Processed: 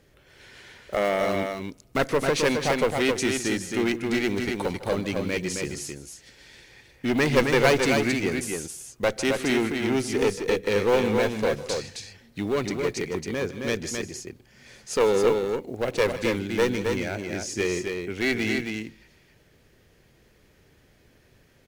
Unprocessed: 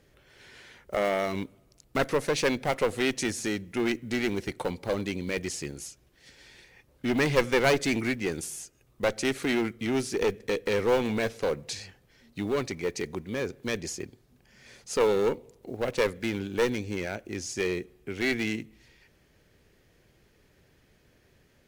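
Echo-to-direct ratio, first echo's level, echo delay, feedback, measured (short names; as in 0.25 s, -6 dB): -4.0 dB, -17.0 dB, 0.151 s, no steady repeat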